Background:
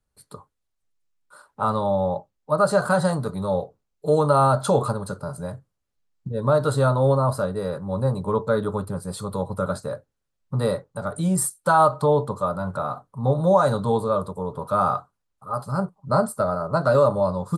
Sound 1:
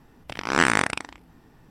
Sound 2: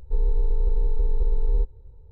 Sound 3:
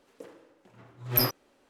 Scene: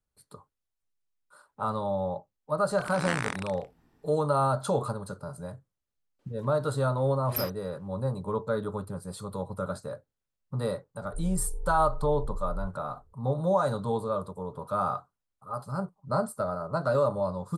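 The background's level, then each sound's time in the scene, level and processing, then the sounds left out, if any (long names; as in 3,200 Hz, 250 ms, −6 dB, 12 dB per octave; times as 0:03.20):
background −7.5 dB
0:02.49: mix in 1 −11.5 dB
0:06.19: mix in 3 −8.5 dB
0:11.03: mix in 2 −13.5 dB + Butterworth low-pass 830 Hz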